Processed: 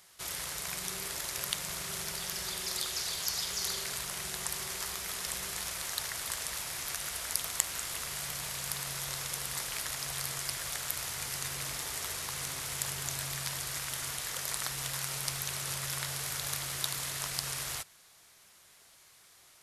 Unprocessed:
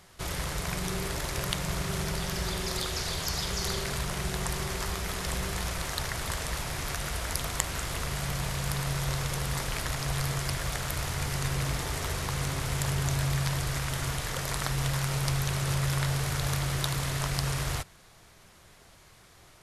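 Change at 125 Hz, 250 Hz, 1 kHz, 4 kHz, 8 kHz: -16.5 dB, -15.0 dB, -7.5 dB, -1.5 dB, +1.5 dB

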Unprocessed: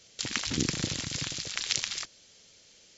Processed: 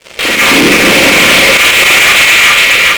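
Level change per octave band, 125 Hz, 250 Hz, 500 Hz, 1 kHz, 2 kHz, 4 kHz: +15.0 dB, +24.0 dB, +33.0 dB, +34.5 dB, +35.5 dB, +26.0 dB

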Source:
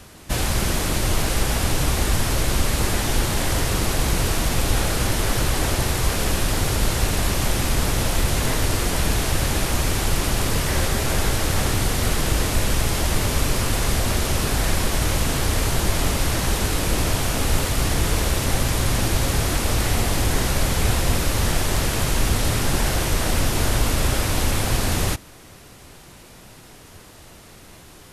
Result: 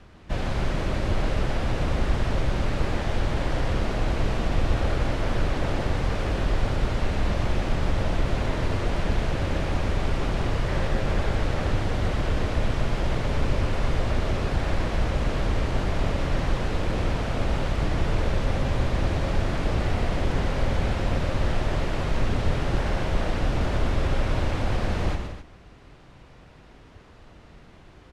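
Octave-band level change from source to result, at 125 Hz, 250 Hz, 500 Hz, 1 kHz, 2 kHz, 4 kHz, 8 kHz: -3.5 dB, -3.5 dB, -2.5 dB, -4.5 dB, -6.5 dB, -11.0 dB, -21.5 dB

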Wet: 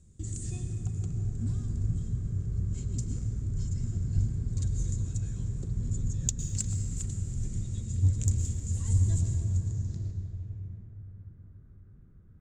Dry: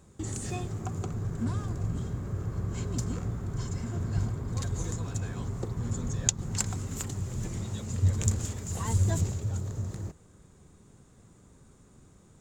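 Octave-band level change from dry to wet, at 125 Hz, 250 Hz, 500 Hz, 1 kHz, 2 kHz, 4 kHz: +1.5 dB, -3.5 dB, -11.0 dB, under -15 dB, under -10 dB, -8.5 dB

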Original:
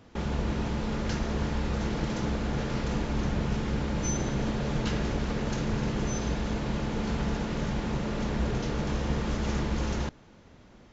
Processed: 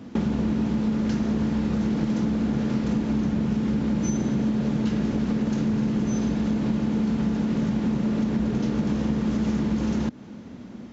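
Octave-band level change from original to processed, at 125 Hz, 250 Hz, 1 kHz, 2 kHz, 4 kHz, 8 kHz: +2.5 dB, +9.5 dB, -2.0 dB, -2.5 dB, -2.5 dB, no reading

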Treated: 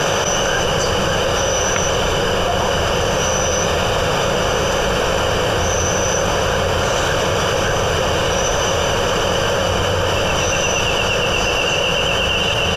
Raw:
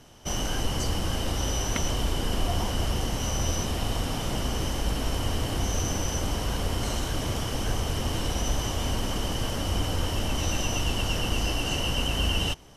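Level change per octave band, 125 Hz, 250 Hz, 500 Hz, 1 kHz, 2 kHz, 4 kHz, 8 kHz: +6.0 dB, +7.0 dB, +18.0 dB, +15.5 dB, +17.0 dB, +12.0 dB, +12.0 dB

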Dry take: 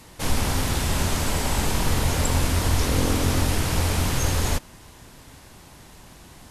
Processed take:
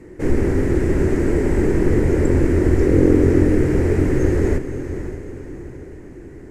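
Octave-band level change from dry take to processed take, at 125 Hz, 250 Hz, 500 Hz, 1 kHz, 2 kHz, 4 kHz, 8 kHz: +5.0 dB, +11.5 dB, +12.5 dB, -5.5 dB, -1.0 dB, under -15 dB, -13.5 dB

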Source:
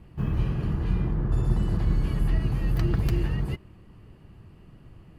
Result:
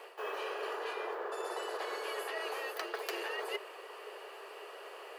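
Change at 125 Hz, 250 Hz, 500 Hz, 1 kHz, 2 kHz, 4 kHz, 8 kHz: under -40 dB, -21.5 dB, +1.0 dB, +4.5 dB, +4.5 dB, +4.0 dB, no reading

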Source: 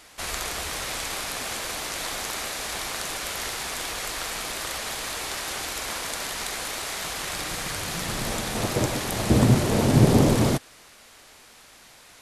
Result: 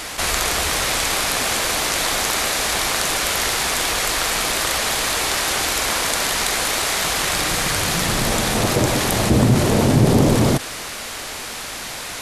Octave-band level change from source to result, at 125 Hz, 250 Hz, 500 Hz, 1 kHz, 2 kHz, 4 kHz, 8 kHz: +4.0 dB, +4.5 dB, +6.5 dB, +9.0 dB, +10.0 dB, +10.5 dB, +10.0 dB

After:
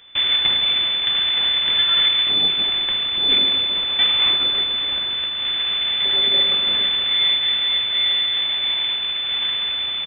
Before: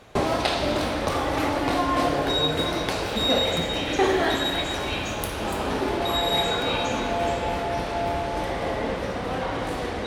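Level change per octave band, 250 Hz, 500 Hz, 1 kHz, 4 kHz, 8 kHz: -13.0 dB, -13.5 dB, -10.0 dB, +14.5 dB, under -40 dB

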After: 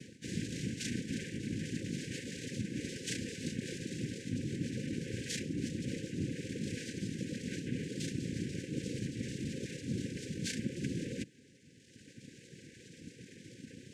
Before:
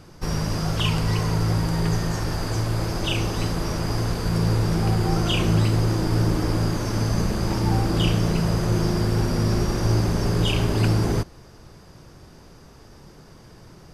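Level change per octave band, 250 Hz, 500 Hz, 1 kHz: -12.5 dB, -17.0 dB, under -40 dB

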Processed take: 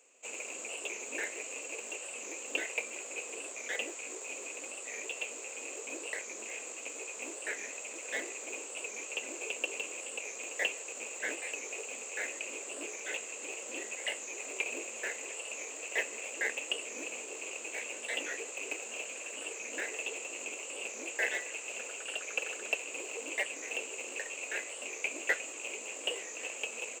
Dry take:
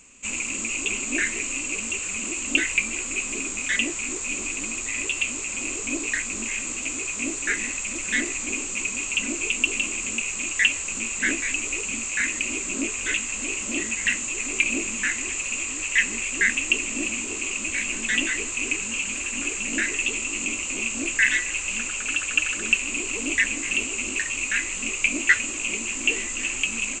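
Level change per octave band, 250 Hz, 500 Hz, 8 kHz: -18.5 dB, -3.0 dB, -13.5 dB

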